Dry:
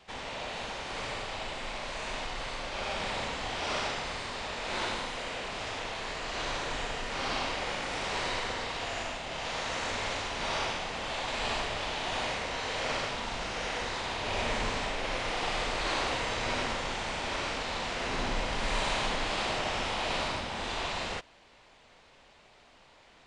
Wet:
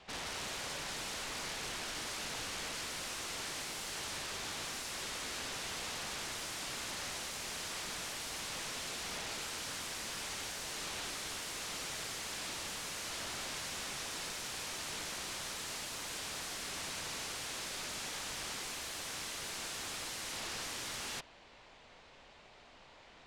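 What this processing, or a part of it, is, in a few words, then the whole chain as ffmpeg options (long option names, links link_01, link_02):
overflowing digital effects unit: -af "aeval=exprs='(mod(56.2*val(0)+1,2)-1)/56.2':channel_layout=same,lowpass=8600"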